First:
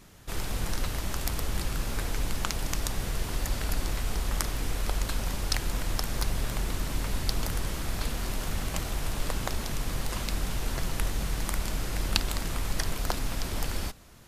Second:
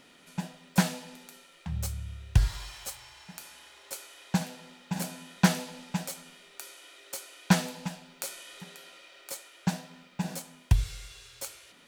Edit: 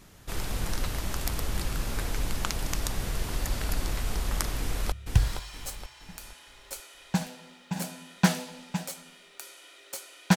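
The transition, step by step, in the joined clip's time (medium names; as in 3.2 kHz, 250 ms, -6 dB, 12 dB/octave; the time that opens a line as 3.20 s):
first
4.59–4.92 s: echo throw 470 ms, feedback 40%, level -5 dB
4.92 s: go over to second from 2.12 s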